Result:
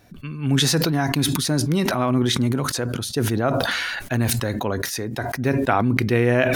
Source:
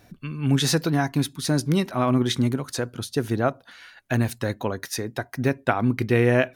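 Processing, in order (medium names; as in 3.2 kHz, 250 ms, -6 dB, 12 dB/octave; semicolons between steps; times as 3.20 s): decay stretcher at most 21 dB/s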